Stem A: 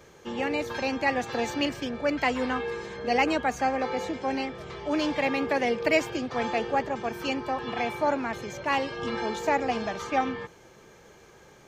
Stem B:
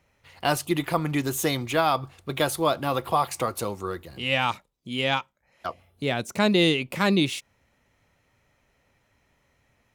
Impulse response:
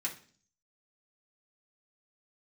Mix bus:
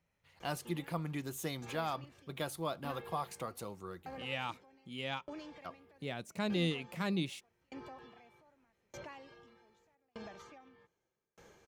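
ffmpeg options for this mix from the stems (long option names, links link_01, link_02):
-filter_complex "[0:a]acompressor=threshold=-29dB:ratio=6,alimiter=level_in=7.5dB:limit=-24dB:level=0:latency=1:release=177,volume=-7.5dB,aeval=exprs='val(0)*pow(10,-38*if(lt(mod(0.82*n/s,1),2*abs(0.82)/1000),1-mod(0.82*n/s,1)/(2*abs(0.82)/1000),(mod(0.82*n/s,1)-2*abs(0.82)/1000)/(1-2*abs(0.82)/1000))/20)':channel_layout=same,adelay=400,volume=-4.5dB[link_01];[1:a]equalizer=frequency=170:width=5.1:gain=9,volume=-15dB[link_02];[link_01][link_02]amix=inputs=2:normalize=0"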